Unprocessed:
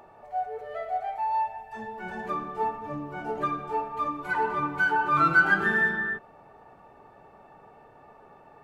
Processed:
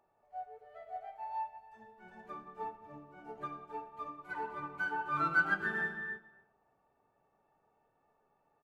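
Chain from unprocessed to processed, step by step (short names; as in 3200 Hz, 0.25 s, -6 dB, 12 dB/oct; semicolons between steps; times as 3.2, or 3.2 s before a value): echo 0.273 s -11.5 dB; reverb RT60 1.1 s, pre-delay 20 ms, DRR 11.5 dB; upward expander 1.5:1, over -44 dBFS; gain -8.5 dB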